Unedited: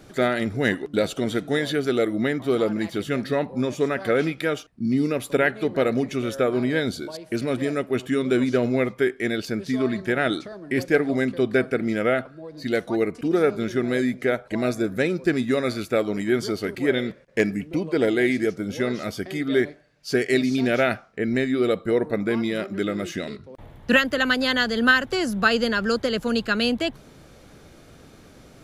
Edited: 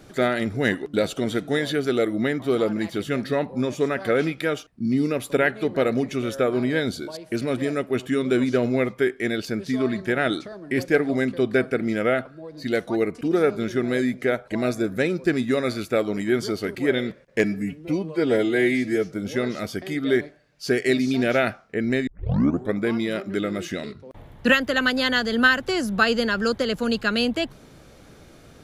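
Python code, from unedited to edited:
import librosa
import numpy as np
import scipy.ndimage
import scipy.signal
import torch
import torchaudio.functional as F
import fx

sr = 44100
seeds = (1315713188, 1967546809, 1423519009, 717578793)

y = fx.edit(x, sr, fx.stretch_span(start_s=17.44, length_s=1.12, factor=1.5),
    fx.tape_start(start_s=21.51, length_s=0.67), tone=tone)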